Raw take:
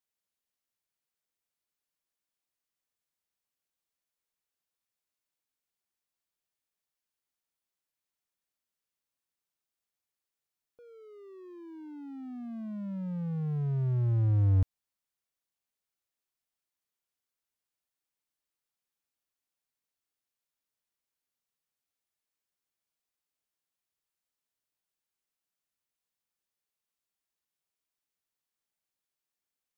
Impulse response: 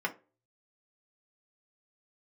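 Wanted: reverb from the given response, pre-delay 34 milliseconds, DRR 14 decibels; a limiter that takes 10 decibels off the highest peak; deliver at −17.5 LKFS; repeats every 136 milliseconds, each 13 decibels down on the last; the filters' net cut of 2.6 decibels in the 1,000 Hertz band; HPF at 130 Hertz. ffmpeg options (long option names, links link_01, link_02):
-filter_complex "[0:a]highpass=130,equalizer=frequency=1000:width_type=o:gain=-3.5,alimiter=level_in=9dB:limit=-24dB:level=0:latency=1,volume=-9dB,aecho=1:1:136|272|408:0.224|0.0493|0.0108,asplit=2[link_01][link_02];[1:a]atrim=start_sample=2205,adelay=34[link_03];[link_02][link_03]afir=irnorm=-1:irlink=0,volume=-21dB[link_04];[link_01][link_04]amix=inputs=2:normalize=0,volume=22dB"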